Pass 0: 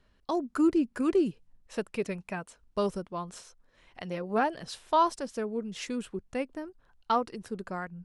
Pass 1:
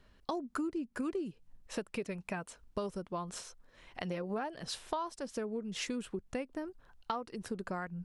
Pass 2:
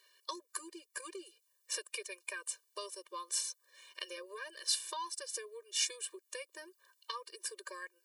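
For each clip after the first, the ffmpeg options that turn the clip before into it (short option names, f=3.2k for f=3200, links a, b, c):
-af "acompressor=threshold=-37dB:ratio=8,volume=3dB"
-af "aderivative,afftfilt=real='re*eq(mod(floor(b*sr/1024/310),2),1)':imag='im*eq(mod(floor(b*sr/1024/310),2),1)':win_size=1024:overlap=0.75,volume=15dB"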